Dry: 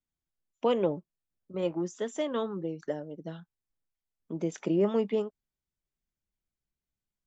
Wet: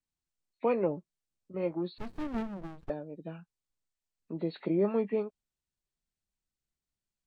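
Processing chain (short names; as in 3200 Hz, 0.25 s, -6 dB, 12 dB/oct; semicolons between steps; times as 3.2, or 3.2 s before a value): nonlinear frequency compression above 1600 Hz 1.5:1; 1.98–2.9 running maximum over 65 samples; gain -2 dB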